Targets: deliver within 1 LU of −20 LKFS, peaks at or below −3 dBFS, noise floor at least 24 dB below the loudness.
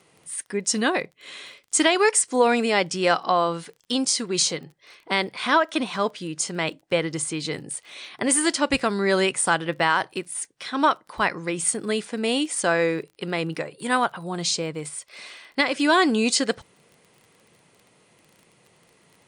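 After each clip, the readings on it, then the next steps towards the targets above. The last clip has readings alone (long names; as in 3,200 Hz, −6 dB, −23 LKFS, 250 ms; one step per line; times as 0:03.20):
crackle rate 25 per second; integrated loudness −23.5 LKFS; sample peak −7.5 dBFS; target loudness −20.0 LKFS
→ click removal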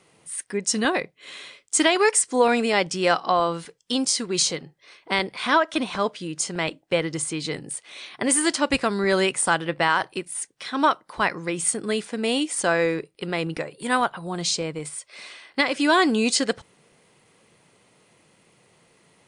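crackle rate 0 per second; integrated loudness −23.5 LKFS; sample peak −7.5 dBFS; target loudness −20.0 LKFS
→ level +3.5 dB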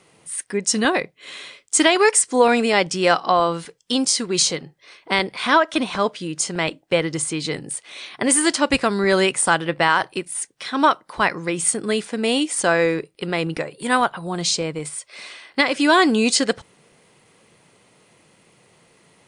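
integrated loudness −20.0 LKFS; sample peak −4.0 dBFS; background noise floor −58 dBFS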